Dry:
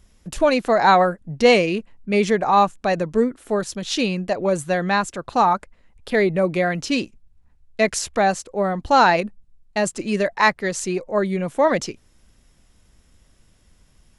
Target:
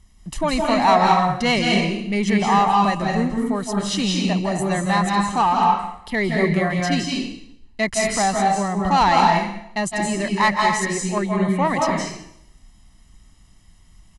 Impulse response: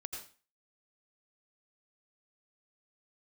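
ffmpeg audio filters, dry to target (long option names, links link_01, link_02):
-filter_complex "[0:a]aecho=1:1:1:0.64,acontrast=63[link_01];[1:a]atrim=start_sample=2205,asetrate=22491,aresample=44100[link_02];[link_01][link_02]afir=irnorm=-1:irlink=0,volume=-8dB"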